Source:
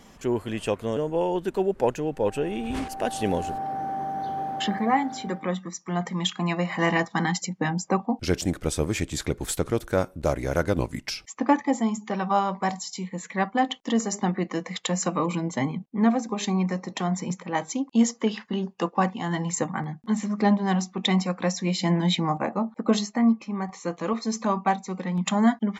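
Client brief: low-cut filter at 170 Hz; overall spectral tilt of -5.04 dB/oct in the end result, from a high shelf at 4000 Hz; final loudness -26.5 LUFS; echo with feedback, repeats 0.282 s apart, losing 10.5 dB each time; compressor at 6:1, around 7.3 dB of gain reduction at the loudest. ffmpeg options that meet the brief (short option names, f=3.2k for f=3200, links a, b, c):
-af "highpass=170,highshelf=f=4k:g=-5.5,acompressor=threshold=-24dB:ratio=6,aecho=1:1:282|564|846:0.299|0.0896|0.0269,volume=4dB"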